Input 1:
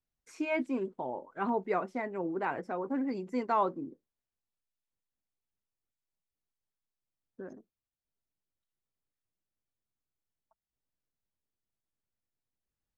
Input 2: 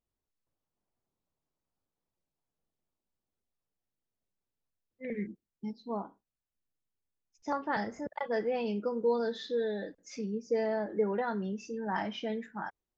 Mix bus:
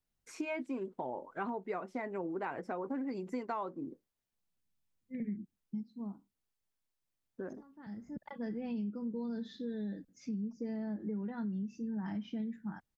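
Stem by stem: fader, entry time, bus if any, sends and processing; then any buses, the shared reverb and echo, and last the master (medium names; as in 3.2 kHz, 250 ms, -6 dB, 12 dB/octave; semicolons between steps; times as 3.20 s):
+2.5 dB, 0.00 s, no send, none
-10.5 dB, 0.10 s, no send, resonant low shelf 340 Hz +13.5 dB, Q 1.5; auto duck -22 dB, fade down 1.85 s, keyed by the first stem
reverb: none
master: compression 6:1, threshold -35 dBFS, peak gain reduction 13.5 dB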